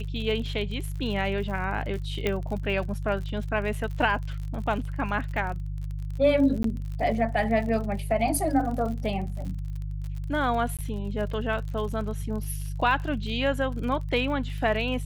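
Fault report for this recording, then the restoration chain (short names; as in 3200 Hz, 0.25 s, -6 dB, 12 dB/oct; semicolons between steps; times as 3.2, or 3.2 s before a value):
crackle 51/s -34 dBFS
hum 50 Hz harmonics 3 -32 dBFS
2.27 pop -13 dBFS
6.63–6.64 gap 13 ms
10.77–10.79 gap 17 ms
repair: de-click; de-hum 50 Hz, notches 3; interpolate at 6.63, 13 ms; interpolate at 10.77, 17 ms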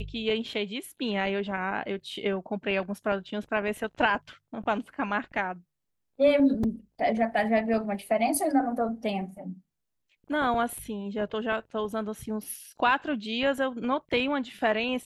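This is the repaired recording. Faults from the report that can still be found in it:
none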